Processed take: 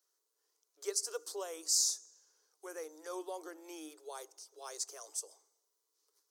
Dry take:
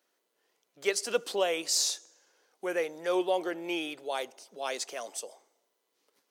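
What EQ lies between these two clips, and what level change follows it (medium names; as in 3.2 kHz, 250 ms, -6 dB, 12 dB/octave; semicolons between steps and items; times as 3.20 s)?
dynamic bell 3 kHz, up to -8 dB, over -49 dBFS, Q 1.1; rippled Chebyshev high-pass 300 Hz, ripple 9 dB; resonant high shelf 3.8 kHz +13.5 dB, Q 1.5; -6.5 dB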